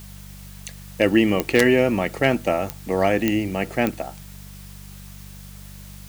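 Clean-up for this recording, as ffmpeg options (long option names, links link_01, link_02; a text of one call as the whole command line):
ffmpeg -i in.wav -af "adeclick=threshold=4,bandreject=frequency=48.8:width_type=h:width=4,bandreject=frequency=97.6:width_type=h:width=4,bandreject=frequency=146.4:width_type=h:width=4,bandreject=frequency=195.2:width_type=h:width=4,afftdn=noise_reduction=26:noise_floor=-40" out.wav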